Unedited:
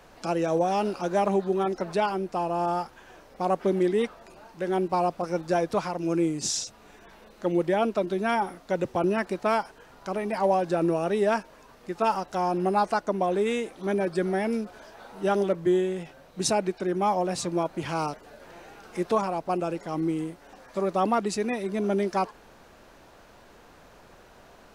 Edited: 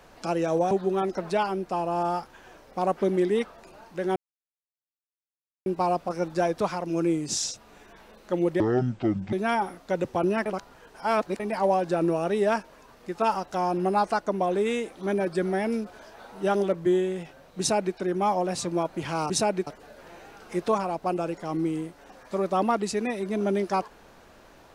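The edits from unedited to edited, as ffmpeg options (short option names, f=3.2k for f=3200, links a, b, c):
-filter_complex "[0:a]asplit=9[a][b][c][d][e][f][g][h][i];[a]atrim=end=0.712[j];[b]atrim=start=1.338:end=4.79,asetpts=PTS-STARTPTS,afade=t=out:st=3.448:d=0.004:c=hsin,apad=pad_dur=1.5[k];[c]atrim=start=4.79:end=7.734,asetpts=PTS-STARTPTS,afade=t=in:d=0.004:c=hsin[l];[d]atrim=start=7.73:end=8.13,asetpts=PTS-STARTPTS,asetrate=24255,aresample=44100[m];[e]atrim=start=8.126:end=9.262[n];[f]atrim=start=9.258:end=10.202,asetpts=PTS-STARTPTS,areverse[o];[g]atrim=start=10.198:end=18.102[p];[h]atrim=start=16.388:end=16.762[q];[i]atrim=start=18.098[r];[k][l]concat=n=2:v=0:a=1[s];[j][s]acrossfade=d=0.004:c1=hsin:c2=hsin[t];[t][m]acrossfade=d=0.004:c1=hsin:c2=hsin[u];[u][n]acrossfade=d=0.004:c1=hsin:c2=hsin[v];[v][o]acrossfade=d=0.004:c1=hsin:c2=hsin[w];[w][p]acrossfade=d=0.004:c1=hsin:c2=hsin[x];[x][q]acrossfade=d=0.004:c1=hsin:c2=hsin[y];[y][r]acrossfade=d=0.004:c1=hsin:c2=hsin"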